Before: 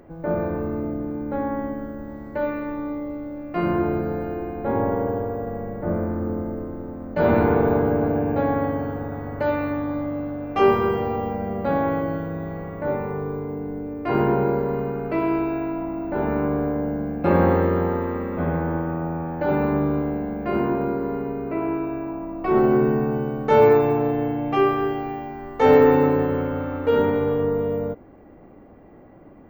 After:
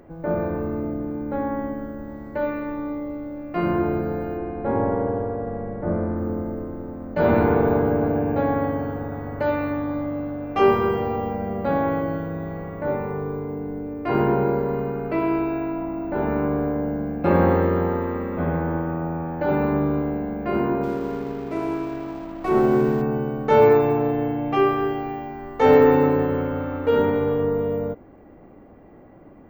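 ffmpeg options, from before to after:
ffmpeg -i in.wav -filter_complex "[0:a]asettb=1/sr,asplit=3[link_01][link_02][link_03];[link_01]atrim=end=4.374[link_04];[link_02]atrim=start=4.37:end=6.17,asetpts=PTS-STARTPTS,afade=type=in:duration=0.004:curve=qsin,afade=type=out:start_time=1.796:duration=0.004:curve=qsin,aemphasis=mode=reproduction:type=50fm[link_05];[link_03]atrim=start=6.166[link_06];[link_04][link_05]acrossfade=duration=0.004:curve1=hsin:curve2=qsin[link_07];[link_07][link_06]acrossfade=duration=0.004:curve1=qsin:curve2=hsin,asettb=1/sr,asplit=3[link_08][link_09][link_10];[link_08]atrim=end=20.834[link_11];[link_09]atrim=start=20.83:end=23.02,asetpts=PTS-STARTPTS,afade=type=in:duration=0.004:curve=qsin,afade=type=out:start_time=2.186:duration=0.004:curve=qsin,aeval=exprs='sgn(val(0))*max(abs(val(0))-0.00891,0)':channel_layout=same[link_12];[link_10]atrim=start=23.016[link_13];[link_11][link_12]acrossfade=duration=0.004:curve1=hsin:curve2=qsin[link_14];[link_14][link_13]acrossfade=duration=0.004:curve1=qsin:curve2=hsin" out.wav

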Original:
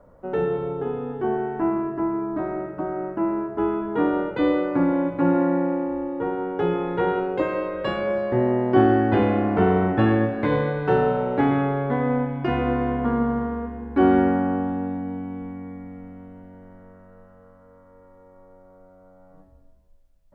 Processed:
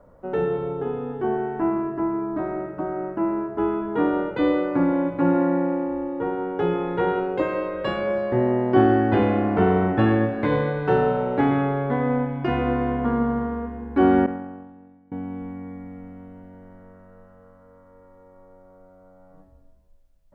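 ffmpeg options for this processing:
ffmpeg -i in.wav -filter_complex "[0:a]asettb=1/sr,asplit=3[link_01][link_02][link_03];[link_01]atrim=end=14.264[link_04];[link_02]atrim=start=14.26:end=15.12,asetpts=PTS-STARTPTS,afade=type=in:duration=0.004:curve=qsin,afade=type=out:start_time=0.856:duration=0.004:curve=qsin,agate=range=-33dB:threshold=-14dB:ratio=3:release=100:detection=peak[link_05];[link_03]atrim=start=15.116[link_06];[link_04][link_05]acrossfade=duration=0.004:curve1=hsin:curve2=qsin[link_07];[link_07][link_06]acrossfade=duration=0.004:curve1=qsin:curve2=hsin" out.wav

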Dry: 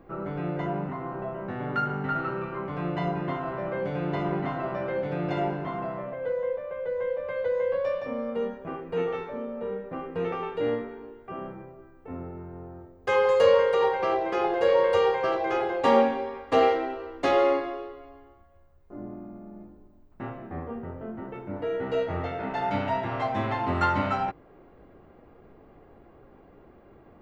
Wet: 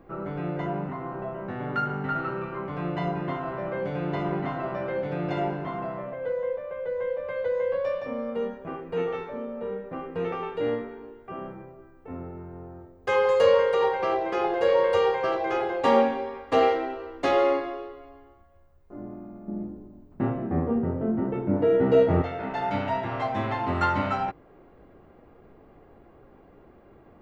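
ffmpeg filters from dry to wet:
ffmpeg -i in.wav -filter_complex "[0:a]asettb=1/sr,asplit=3[link_01][link_02][link_03];[link_01]atrim=end=19.484[link_04];[link_02]atrim=start=19.48:end=22.22,asetpts=PTS-STARTPTS,afade=type=in:duration=0.004:curve=qsin,afade=type=out:start_time=2.736:duration=0.004:curve=qsin,equalizer=frequency=210:width=0.34:gain=12.5[link_05];[link_03]atrim=start=22.216[link_06];[link_04][link_05]acrossfade=duration=0.004:curve1=hsin:curve2=qsin[link_07];[link_07][link_06]acrossfade=duration=0.004:curve1=qsin:curve2=hsin" out.wav

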